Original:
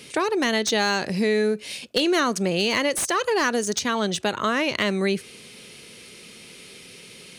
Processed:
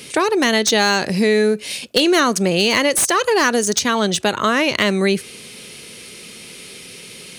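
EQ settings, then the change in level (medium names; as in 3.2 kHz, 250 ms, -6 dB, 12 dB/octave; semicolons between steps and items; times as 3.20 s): treble shelf 8 kHz +5.5 dB; +6.0 dB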